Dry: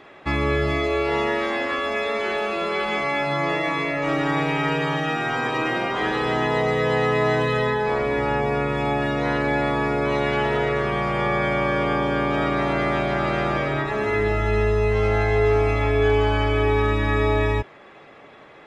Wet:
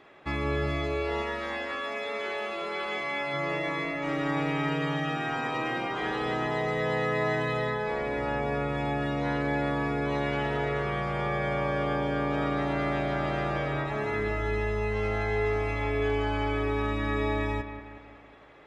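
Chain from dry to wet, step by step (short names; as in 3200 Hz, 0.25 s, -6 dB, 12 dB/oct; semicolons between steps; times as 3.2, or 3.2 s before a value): 1.22–3.34 low shelf 280 Hz -7.5 dB; analogue delay 0.183 s, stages 4096, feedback 52%, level -10 dB; gain -8 dB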